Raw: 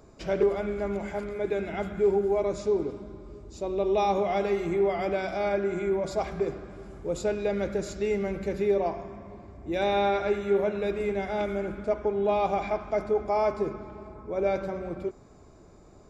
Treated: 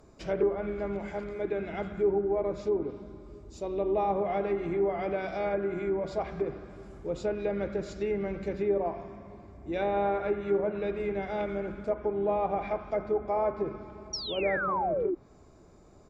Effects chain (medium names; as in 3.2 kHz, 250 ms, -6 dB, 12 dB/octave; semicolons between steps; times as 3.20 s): painted sound fall, 14.13–15.15 s, 330–5800 Hz -26 dBFS; harmony voices -4 st -16 dB; low-pass that closes with the level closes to 1.6 kHz, closed at -21.5 dBFS; trim -3 dB